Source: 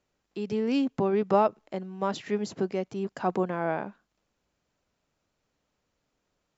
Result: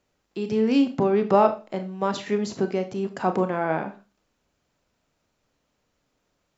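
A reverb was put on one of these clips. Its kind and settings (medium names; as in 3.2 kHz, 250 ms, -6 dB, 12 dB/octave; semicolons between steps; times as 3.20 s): Schroeder reverb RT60 0.32 s, combs from 25 ms, DRR 7.5 dB; trim +4 dB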